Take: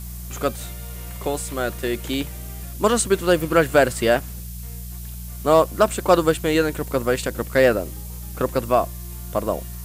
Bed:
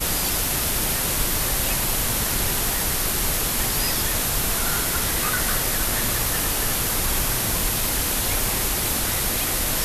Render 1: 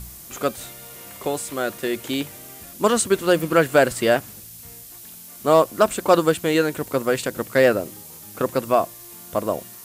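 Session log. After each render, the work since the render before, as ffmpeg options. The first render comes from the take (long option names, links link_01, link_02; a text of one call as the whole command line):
ffmpeg -i in.wav -af "bandreject=frequency=60:width_type=h:width=4,bandreject=frequency=120:width_type=h:width=4,bandreject=frequency=180:width_type=h:width=4" out.wav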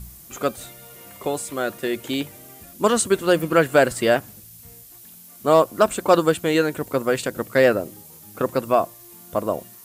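ffmpeg -i in.wav -af "afftdn=noise_reduction=6:noise_floor=-42" out.wav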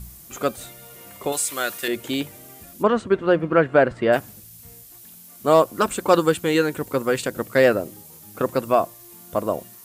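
ffmpeg -i in.wav -filter_complex "[0:a]asettb=1/sr,asplit=3[link_01][link_02][link_03];[link_01]atrim=end=1.324[link_04];[link_02]atrim=start=1.32:end=1.88,asetpts=PTS-STARTPTS,afade=type=in:duration=0.004:curve=qsin,afade=type=out:start_time=0.556:duration=0.004:curve=qsin,tiltshelf=frequency=970:gain=-8.5[link_05];[link_03]atrim=start=1.876[link_06];[link_04][link_05]acrossfade=duration=0.004:curve1=hsin:curve2=qsin[link_07];[link_07][link_06]acrossfade=duration=0.004:curve1=qsin:curve2=hsin,asplit=3[link_08][link_09][link_10];[link_08]afade=type=out:start_time=2.82:duration=0.02[link_11];[link_09]lowpass=2000,afade=type=in:start_time=2.82:duration=0.02,afade=type=out:start_time=4.12:duration=0.02[link_12];[link_10]afade=type=in:start_time=4.12:duration=0.02[link_13];[link_11][link_12][link_13]amix=inputs=3:normalize=0,asettb=1/sr,asplit=3[link_14][link_15][link_16];[link_14]atrim=end=5.734[link_17];[link_15]atrim=start=5.73:end=7.26,asetpts=PTS-STARTPTS,afade=type=in:duration=0.004:curve=qsin,afade=type=out:start_time=1.526:duration=0.004:curve=qsin,bandreject=frequency=650:width=6.3[link_18];[link_16]atrim=start=7.256[link_19];[link_17][link_18]acrossfade=duration=0.004:curve1=hsin:curve2=qsin[link_20];[link_20][link_19]acrossfade=duration=0.004:curve1=qsin:curve2=hsin" out.wav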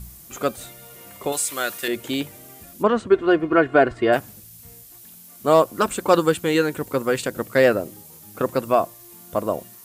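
ffmpeg -i in.wav -filter_complex "[0:a]asettb=1/sr,asplit=3[link_01][link_02][link_03];[link_01]atrim=end=3.104[link_04];[link_02]atrim=start=3.1:end=4.14,asetpts=PTS-STARTPTS,afade=type=in:duration=0.004:curve=qsin,afade=type=out:start_time=1.036:duration=0.004:curve=qsin,aecho=1:1:2.8:0.6,atrim=end_sample=45864[link_05];[link_03]atrim=start=4.136[link_06];[link_04][link_05]acrossfade=duration=0.004:curve1=hsin:curve2=qsin[link_07];[link_07][link_06]acrossfade=duration=0.004:curve1=qsin:curve2=hsin" out.wav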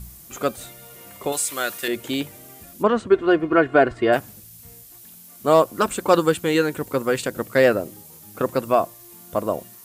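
ffmpeg -i in.wav -af anull out.wav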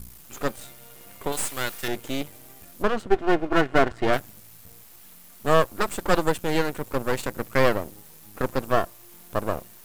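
ffmpeg -i in.wav -af "aeval=exprs='max(val(0),0)':channel_layout=same" out.wav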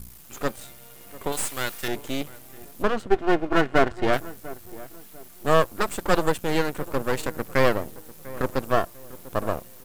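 ffmpeg -i in.wav -filter_complex "[0:a]asplit=2[link_01][link_02];[link_02]adelay=696,lowpass=frequency=1200:poles=1,volume=-17.5dB,asplit=2[link_03][link_04];[link_04]adelay=696,lowpass=frequency=1200:poles=1,volume=0.37,asplit=2[link_05][link_06];[link_06]adelay=696,lowpass=frequency=1200:poles=1,volume=0.37[link_07];[link_01][link_03][link_05][link_07]amix=inputs=4:normalize=0" out.wav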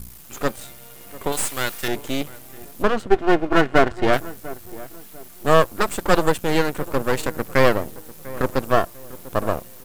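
ffmpeg -i in.wav -af "volume=4dB,alimiter=limit=-1dB:level=0:latency=1" out.wav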